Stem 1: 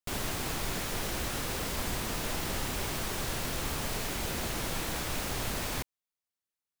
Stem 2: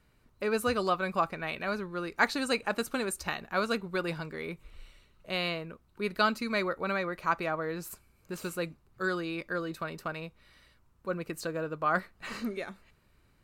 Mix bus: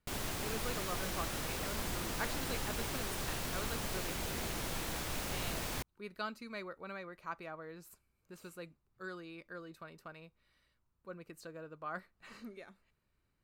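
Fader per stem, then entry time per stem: -5.0 dB, -14.0 dB; 0.00 s, 0.00 s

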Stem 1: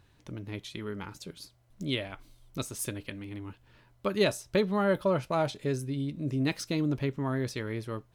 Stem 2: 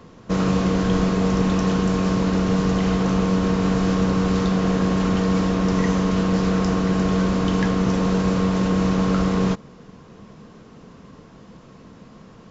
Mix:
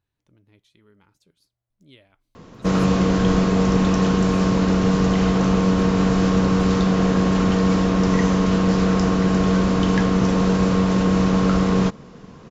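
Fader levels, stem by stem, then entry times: -19.0 dB, +2.0 dB; 0.00 s, 2.35 s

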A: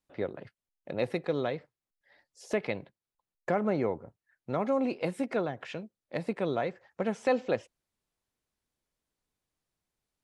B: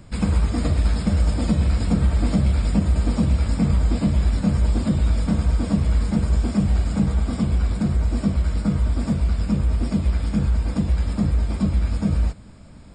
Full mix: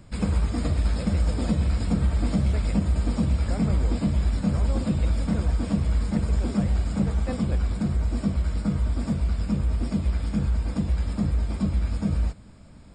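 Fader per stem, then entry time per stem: -9.5 dB, -4.0 dB; 0.00 s, 0.00 s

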